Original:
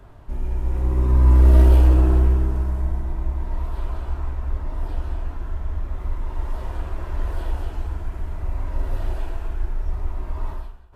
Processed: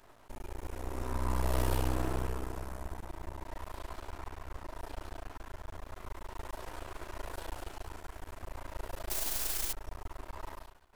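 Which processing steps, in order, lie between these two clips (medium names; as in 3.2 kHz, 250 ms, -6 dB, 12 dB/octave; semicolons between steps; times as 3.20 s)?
9.10–9.73 s: word length cut 6-bit, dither triangular; tone controls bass -14 dB, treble +8 dB; half-wave rectifier; trim -2 dB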